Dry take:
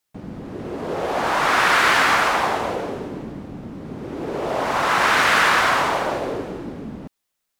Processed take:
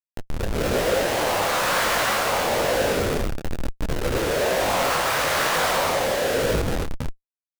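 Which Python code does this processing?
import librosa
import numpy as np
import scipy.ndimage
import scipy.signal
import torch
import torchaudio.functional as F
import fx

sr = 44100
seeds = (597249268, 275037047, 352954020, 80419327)

y = fx.highpass_res(x, sr, hz=520.0, q=3.6)
y = fx.schmitt(y, sr, flips_db=-27.5)
y = fx.detune_double(y, sr, cents=37)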